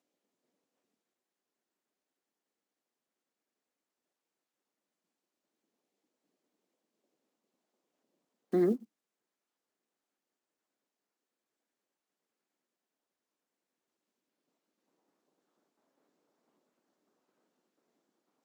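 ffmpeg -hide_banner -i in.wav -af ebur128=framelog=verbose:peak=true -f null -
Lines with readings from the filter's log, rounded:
Integrated loudness:
  I:         -31.2 LUFS
  Threshold: -41.9 LUFS
Loudness range:
  LRA:         1.7 LU
  Threshold: -58.6 LUFS
  LRA low:   -39.9 LUFS
  LRA high:  -38.2 LUFS
True peak:
  Peak:      -18.7 dBFS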